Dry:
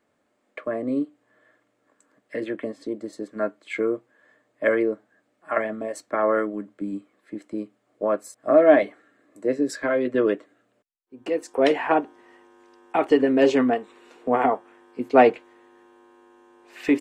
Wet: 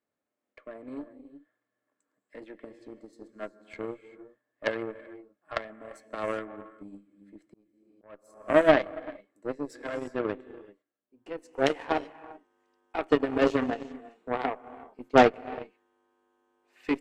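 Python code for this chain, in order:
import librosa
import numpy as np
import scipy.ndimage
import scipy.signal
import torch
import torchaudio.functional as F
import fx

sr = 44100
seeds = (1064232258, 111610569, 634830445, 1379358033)

y = fx.rev_gated(x, sr, seeds[0], gate_ms=410, shape='rising', drr_db=9.0)
y = fx.cheby_harmonics(y, sr, harmonics=(2, 7, 8), levels_db=(-9, -19, -26), full_scale_db=-1.5)
y = fx.auto_swell(y, sr, attack_ms=524.0, at=(7.47, 8.35))
y = y * librosa.db_to_amplitude(-4.0)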